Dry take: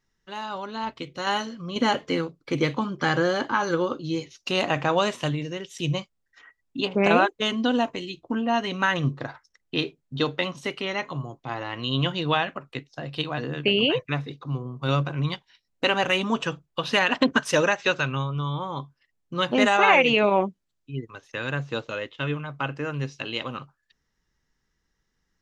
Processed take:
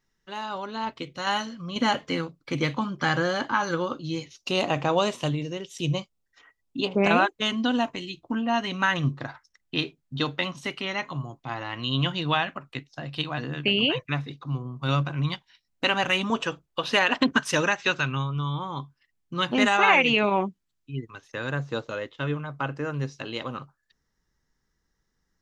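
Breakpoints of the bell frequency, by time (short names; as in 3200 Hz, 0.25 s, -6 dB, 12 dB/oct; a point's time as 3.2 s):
bell -6.5 dB 0.76 oct
65 Hz
from 1.11 s 410 Hz
from 4.33 s 1700 Hz
from 7.05 s 460 Hz
from 16.3 s 150 Hz
from 17.2 s 540 Hz
from 21.28 s 2700 Hz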